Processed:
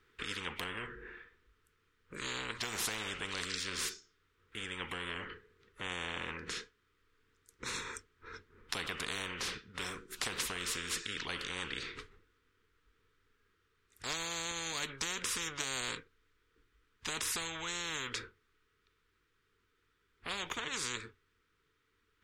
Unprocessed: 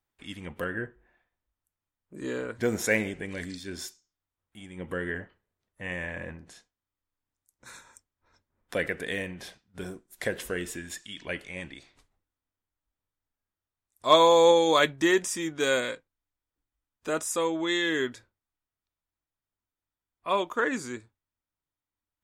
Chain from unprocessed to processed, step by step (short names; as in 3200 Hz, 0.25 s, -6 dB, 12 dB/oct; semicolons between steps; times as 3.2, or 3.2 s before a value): EQ curve 300 Hz 0 dB, 450 Hz +13 dB, 630 Hz -22 dB, 1300 Hz +8 dB, 3400 Hz +3 dB, 12000 Hz -14 dB; compressor, threshold -21 dBFS, peak gain reduction 9.5 dB; spectral compressor 10:1; gain -4 dB